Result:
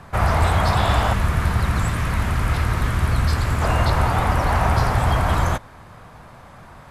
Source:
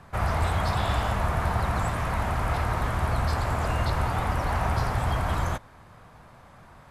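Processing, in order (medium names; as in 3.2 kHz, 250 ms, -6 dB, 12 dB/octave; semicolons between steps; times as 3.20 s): 1.13–3.62 s: peaking EQ 740 Hz -10.5 dB 1.3 oct; trim +7.5 dB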